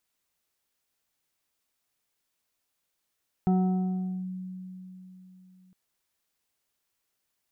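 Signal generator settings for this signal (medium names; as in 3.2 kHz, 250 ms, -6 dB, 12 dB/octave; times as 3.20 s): FM tone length 2.26 s, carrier 185 Hz, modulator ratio 3.01, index 0.55, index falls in 0.79 s linear, decay 3.67 s, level -19 dB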